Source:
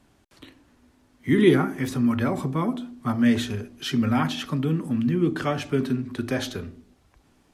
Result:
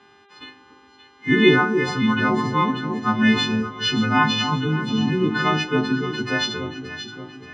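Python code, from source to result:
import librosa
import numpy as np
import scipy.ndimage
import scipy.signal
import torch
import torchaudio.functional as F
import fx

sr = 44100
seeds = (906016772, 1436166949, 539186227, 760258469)

p1 = fx.freq_snap(x, sr, grid_st=3)
p2 = fx.dmg_buzz(p1, sr, base_hz=400.0, harmonics=10, level_db=-59.0, tilt_db=-5, odd_only=False)
p3 = fx.cabinet(p2, sr, low_hz=110.0, low_slope=12, high_hz=4600.0, hz=(600.0, 960.0, 1600.0), db=(-10, 9, 4))
p4 = p3 + fx.echo_alternate(p3, sr, ms=288, hz=970.0, feedback_pct=67, wet_db=-6.5, dry=0)
y = p4 * librosa.db_to_amplitude(3.0)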